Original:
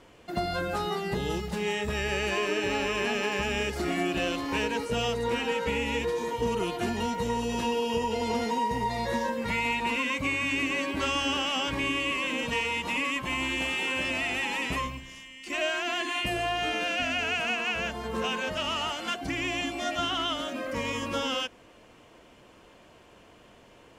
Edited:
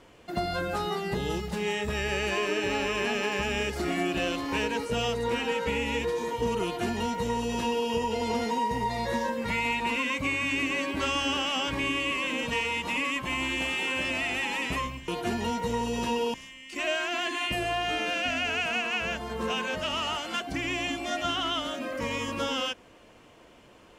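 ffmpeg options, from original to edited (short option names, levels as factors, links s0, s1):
-filter_complex "[0:a]asplit=3[s0][s1][s2];[s0]atrim=end=15.082[s3];[s1]atrim=start=6.638:end=7.902[s4];[s2]atrim=start=15.078[s5];[s3][s4]acrossfade=d=0.004:c1=hsin:c2=hsin[s6];[s6][s5]acrossfade=d=0.004:c1=hsin:c2=hsin"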